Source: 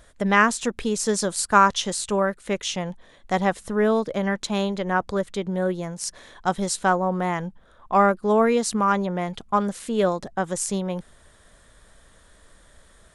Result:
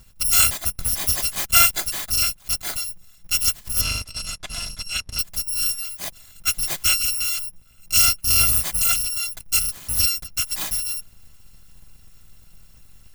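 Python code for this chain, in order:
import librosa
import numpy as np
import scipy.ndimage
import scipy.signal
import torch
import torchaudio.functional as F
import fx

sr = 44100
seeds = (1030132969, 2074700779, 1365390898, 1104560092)

p1 = fx.bit_reversed(x, sr, seeds[0], block=256)
p2 = fx.lowpass(p1, sr, hz=6700.0, slope=12, at=(3.81, 5.19))
p3 = fx.backlash(p2, sr, play_db=-24.5)
p4 = p2 + F.gain(torch.from_numpy(p3), -10.0).numpy()
p5 = fx.low_shelf_res(p4, sr, hz=220.0, db=6.0, q=1.5)
y = F.gain(torch.from_numpy(p5), -1.0).numpy()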